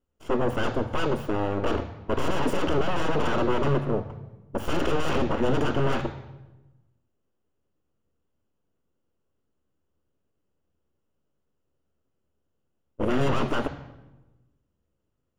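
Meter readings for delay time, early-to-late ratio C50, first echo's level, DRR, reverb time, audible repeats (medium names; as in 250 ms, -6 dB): no echo, 11.5 dB, no echo, 9.0 dB, 1.1 s, no echo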